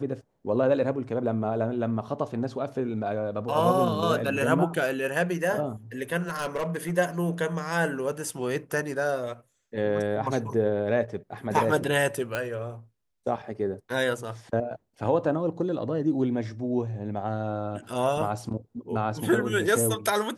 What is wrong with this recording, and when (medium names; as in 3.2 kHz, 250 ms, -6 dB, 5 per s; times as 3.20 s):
6.28–6.98 s: clipped -24 dBFS
12.35 s: pop -14 dBFS